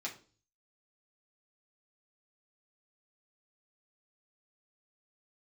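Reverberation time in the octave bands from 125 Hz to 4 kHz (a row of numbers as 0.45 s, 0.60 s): 0.70 s, 0.50 s, 0.45 s, 0.35 s, 0.30 s, 0.35 s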